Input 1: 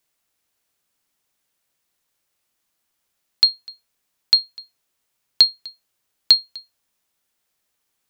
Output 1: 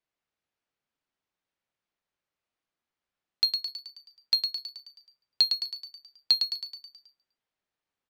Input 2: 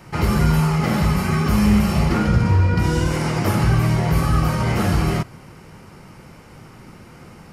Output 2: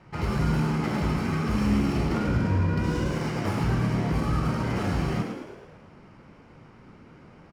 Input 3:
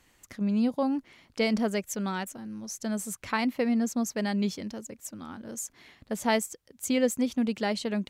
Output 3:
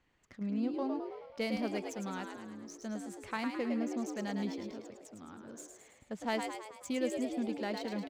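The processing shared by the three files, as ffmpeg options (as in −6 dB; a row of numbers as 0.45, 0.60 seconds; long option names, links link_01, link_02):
-filter_complex "[0:a]adynamicsmooth=sensitivity=7:basefreq=3800,asplit=8[link_01][link_02][link_03][link_04][link_05][link_06][link_07][link_08];[link_02]adelay=107,afreqshift=69,volume=-6dB[link_09];[link_03]adelay=214,afreqshift=138,volume=-11.2dB[link_10];[link_04]adelay=321,afreqshift=207,volume=-16.4dB[link_11];[link_05]adelay=428,afreqshift=276,volume=-21.6dB[link_12];[link_06]adelay=535,afreqshift=345,volume=-26.8dB[link_13];[link_07]adelay=642,afreqshift=414,volume=-32dB[link_14];[link_08]adelay=749,afreqshift=483,volume=-37.2dB[link_15];[link_01][link_09][link_10][link_11][link_12][link_13][link_14][link_15]amix=inputs=8:normalize=0,volume=-9dB"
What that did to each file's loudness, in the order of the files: −10.0, −7.5, −7.5 LU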